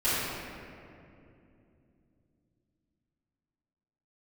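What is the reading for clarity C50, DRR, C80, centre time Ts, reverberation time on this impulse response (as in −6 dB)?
−4.5 dB, −16.0 dB, −2.0 dB, 160 ms, 2.7 s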